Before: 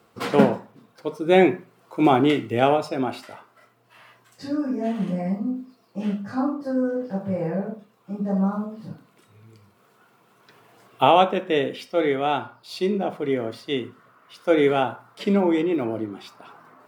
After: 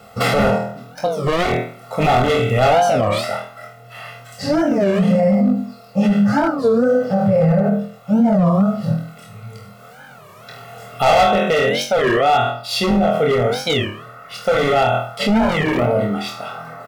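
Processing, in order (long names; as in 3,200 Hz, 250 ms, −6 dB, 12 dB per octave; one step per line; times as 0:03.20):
low-shelf EQ 320 Hz +2.5 dB
on a send: flutter between parallel walls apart 4.2 metres, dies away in 0.41 s
on the sum: hard clipping −15.5 dBFS, distortion −8 dB
comb filter 1.5 ms, depth 100%
0:00.57–0:01.39: downward compressor 3 to 1, threshold −28 dBFS, peak gain reduction 10.5 dB
boost into a limiter +17.5 dB
wow of a warped record 33 1/3 rpm, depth 250 cents
level −7 dB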